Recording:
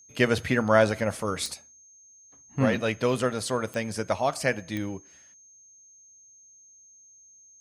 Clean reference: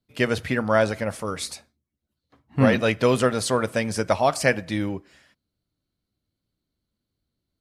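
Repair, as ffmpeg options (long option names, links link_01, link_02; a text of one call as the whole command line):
ffmpeg -i in.wav -af "adeclick=threshold=4,bandreject=frequency=6400:width=30,asetnsamples=nb_out_samples=441:pad=0,asendcmd='1.54 volume volume 5.5dB',volume=0dB" out.wav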